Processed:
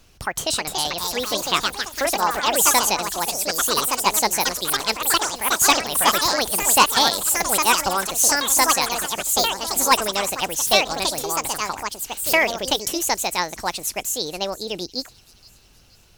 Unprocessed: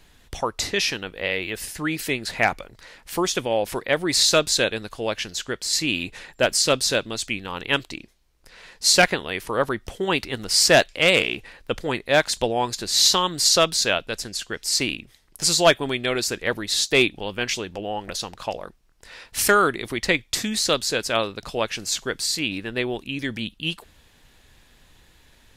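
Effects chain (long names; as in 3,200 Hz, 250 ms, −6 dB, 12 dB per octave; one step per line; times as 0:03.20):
delay with pitch and tempo change per echo 566 ms, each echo +3 semitones, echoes 3
delay with a high-pass on its return 748 ms, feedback 45%, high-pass 3,500 Hz, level −16.5 dB
change of speed 1.58×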